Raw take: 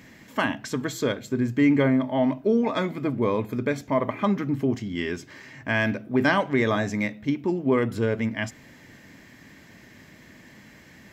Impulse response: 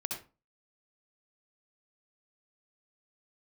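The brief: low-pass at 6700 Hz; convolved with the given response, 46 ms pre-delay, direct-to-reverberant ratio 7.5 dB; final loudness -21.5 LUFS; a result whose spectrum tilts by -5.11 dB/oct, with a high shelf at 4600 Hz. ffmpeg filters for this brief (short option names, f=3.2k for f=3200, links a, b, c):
-filter_complex "[0:a]lowpass=6.7k,highshelf=f=4.6k:g=6.5,asplit=2[a][b];[1:a]atrim=start_sample=2205,adelay=46[c];[b][c]afir=irnorm=-1:irlink=0,volume=-9.5dB[d];[a][d]amix=inputs=2:normalize=0,volume=2.5dB"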